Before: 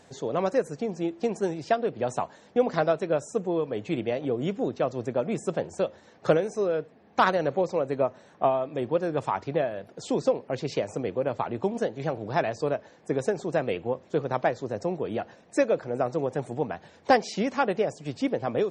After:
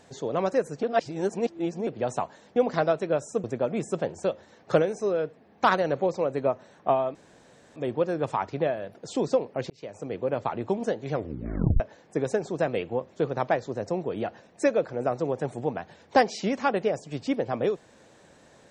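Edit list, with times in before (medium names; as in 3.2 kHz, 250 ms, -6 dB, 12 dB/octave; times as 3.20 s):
0.83–1.87 s: reverse
3.44–4.99 s: delete
8.70 s: insert room tone 0.61 s
10.64–11.23 s: fade in
12.03 s: tape stop 0.71 s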